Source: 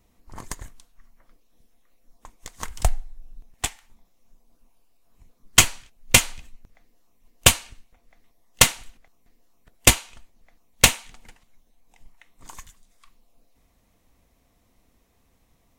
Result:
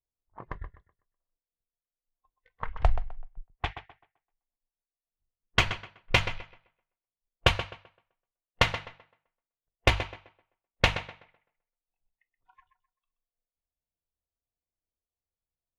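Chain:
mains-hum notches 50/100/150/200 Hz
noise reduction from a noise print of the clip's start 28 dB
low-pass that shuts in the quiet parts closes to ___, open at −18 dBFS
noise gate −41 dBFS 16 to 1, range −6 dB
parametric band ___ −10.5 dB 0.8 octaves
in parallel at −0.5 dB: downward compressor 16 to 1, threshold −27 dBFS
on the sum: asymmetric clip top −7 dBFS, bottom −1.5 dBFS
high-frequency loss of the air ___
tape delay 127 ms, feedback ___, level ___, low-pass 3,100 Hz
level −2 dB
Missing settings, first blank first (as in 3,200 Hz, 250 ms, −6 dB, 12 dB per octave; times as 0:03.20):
950 Hz, 240 Hz, 300 metres, 30%, −9.5 dB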